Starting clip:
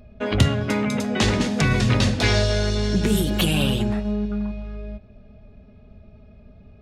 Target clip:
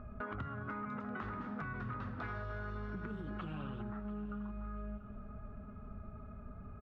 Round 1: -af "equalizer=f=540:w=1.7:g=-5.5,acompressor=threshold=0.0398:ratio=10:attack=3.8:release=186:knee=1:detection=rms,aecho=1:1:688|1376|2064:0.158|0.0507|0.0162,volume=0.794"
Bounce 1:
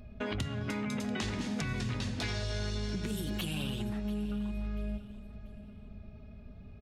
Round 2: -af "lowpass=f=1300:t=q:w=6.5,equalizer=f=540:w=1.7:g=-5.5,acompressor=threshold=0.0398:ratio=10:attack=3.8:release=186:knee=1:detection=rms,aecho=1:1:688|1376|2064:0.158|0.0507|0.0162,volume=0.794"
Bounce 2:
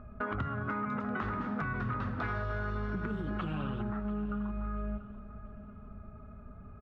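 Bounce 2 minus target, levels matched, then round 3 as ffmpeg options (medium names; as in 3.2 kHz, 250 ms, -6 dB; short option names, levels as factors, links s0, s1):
compression: peak gain reduction -7 dB
-af "lowpass=f=1300:t=q:w=6.5,equalizer=f=540:w=1.7:g=-5.5,acompressor=threshold=0.0158:ratio=10:attack=3.8:release=186:knee=1:detection=rms,aecho=1:1:688|1376|2064:0.158|0.0507|0.0162,volume=0.794"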